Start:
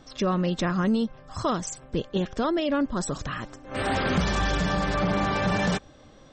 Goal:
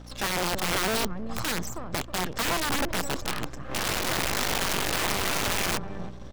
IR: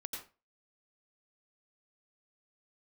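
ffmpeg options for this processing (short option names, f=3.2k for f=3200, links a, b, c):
-filter_complex "[0:a]acrossover=split=110|1100[a][b][c];[a]acompressor=threshold=-38dB:ratio=4[d];[b]acompressor=threshold=-27dB:ratio=4[e];[c]acompressor=threshold=-38dB:ratio=4[f];[d][e][f]amix=inputs=3:normalize=0,aeval=exprs='max(val(0),0)':c=same,asplit=2[g][h];[h]adelay=316,lowpass=f=930:p=1,volume=-9dB,asplit=2[i][j];[j]adelay=316,lowpass=f=930:p=1,volume=0.32,asplit=2[k][l];[l]adelay=316,lowpass=f=930:p=1,volume=0.32,asplit=2[m][n];[n]adelay=316,lowpass=f=930:p=1,volume=0.32[o];[g][i][k][m][o]amix=inputs=5:normalize=0,aeval=exprs='(mod(18.8*val(0)+1,2)-1)/18.8':c=same,aeval=exprs='val(0)+0.00355*(sin(2*PI*60*n/s)+sin(2*PI*2*60*n/s)/2+sin(2*PI*3*60*n/s)/3+sin(2*PI*4*60*n/s)/4+sin(2*PI*5*60*n/s)/5)':c=same,volume=5.5dB"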